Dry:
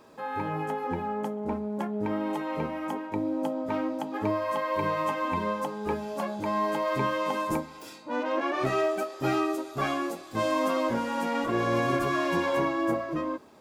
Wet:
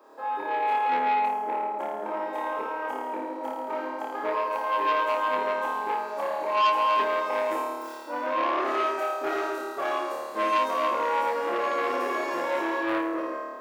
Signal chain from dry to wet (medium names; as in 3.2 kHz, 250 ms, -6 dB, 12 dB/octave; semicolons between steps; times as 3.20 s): chunks repeated in reverse 119 ms, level -13.5 dB; high-pass 350 Hz 24 dB/octave; high-order bell 5 kHz -9 dB 3 oct; on a send: flutter echo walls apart 4.7 m, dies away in 1.5 s; on the sum: transformer saturation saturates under 1.8 kHz